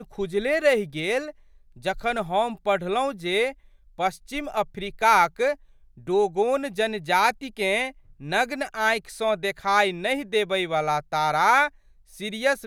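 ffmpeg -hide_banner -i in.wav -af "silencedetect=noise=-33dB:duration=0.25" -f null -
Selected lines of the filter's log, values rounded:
silence_start: 1.30
silence_end: 1.85 | silence_duration: 0.54
silence_start: 3.51
silence_end: 3.99 | silence_duration: 0.48
silence_start: 5.54
silence_end: 6.08 | silence_duration: 0.54
silence_start: 7.90
silence_end: 8.22 | silence_duration: 0.32
silence_start: 11.68
silence_end: 12.20 | silence_duration: 0.52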